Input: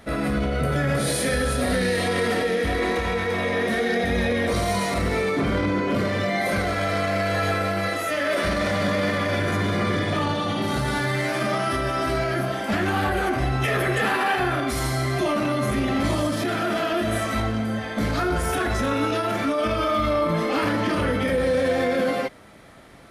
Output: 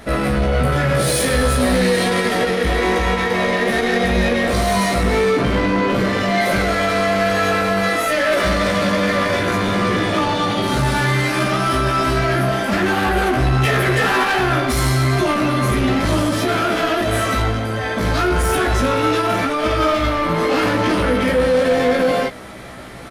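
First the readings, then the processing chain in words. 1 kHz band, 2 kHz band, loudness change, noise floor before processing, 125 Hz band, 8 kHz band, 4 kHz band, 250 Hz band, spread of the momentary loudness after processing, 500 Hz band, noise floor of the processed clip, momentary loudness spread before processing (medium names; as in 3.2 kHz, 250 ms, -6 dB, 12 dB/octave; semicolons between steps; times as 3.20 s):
+6.5 dB, +6.0 dB, +6.0 dB, -28 dBFS, +6.0 dB, +6.5 dB, +7.0 dB, +5.5 dB, 3 LU, +5.5 dB, -22 dBFS, 3 LU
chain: reverse; upward compressor, threshold -38 dBFS; reverse; saturation -22.5 dBFS, distortion -12 dB; doubling 16 ms -3.5 dB; trim +8 dB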